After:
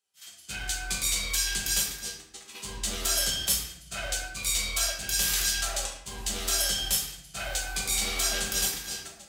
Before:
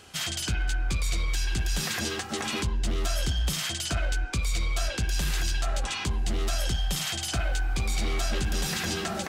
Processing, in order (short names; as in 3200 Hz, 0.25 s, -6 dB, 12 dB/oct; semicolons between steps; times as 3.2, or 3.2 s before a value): gate -27 dBFS, range -37 dB; RIAA curve recording; shoebox room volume 160 m³, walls mixed, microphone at 1.2 m; gain -4 dB